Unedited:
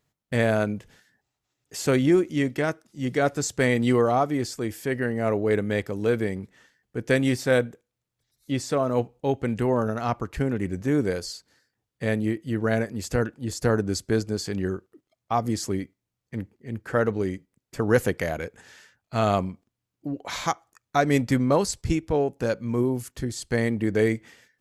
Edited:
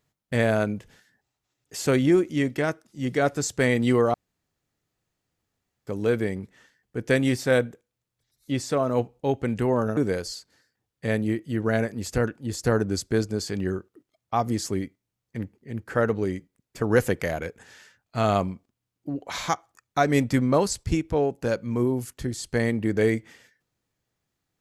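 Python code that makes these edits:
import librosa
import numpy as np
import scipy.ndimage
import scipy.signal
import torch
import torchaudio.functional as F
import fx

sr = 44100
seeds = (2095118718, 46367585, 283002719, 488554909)

y = fx.edit(x, sr, fx.room_tone_fill(start_s=4.14, length_s=1.73),
    fx.cut(start_s=9.97, length_s=0.98), tone=tone)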